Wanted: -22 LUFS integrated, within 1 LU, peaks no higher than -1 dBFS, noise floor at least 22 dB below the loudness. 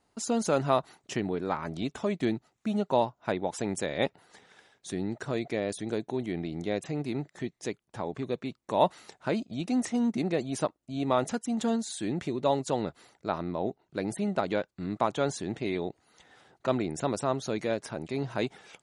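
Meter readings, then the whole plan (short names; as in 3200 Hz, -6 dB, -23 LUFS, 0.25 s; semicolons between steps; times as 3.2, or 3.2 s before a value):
loudness -31.5 LUFS; peak -9.0 dBFS; loudness target -22.0 LUFS
-> gain +9.5 dB; limiter -1 dBFS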